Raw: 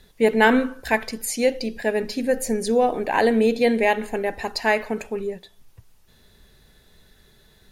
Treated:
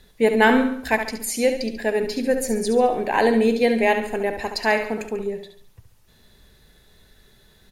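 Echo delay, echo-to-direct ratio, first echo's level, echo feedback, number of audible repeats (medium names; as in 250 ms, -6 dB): 70 ms, -7.5 dB, -8.5 dB, 42%, 4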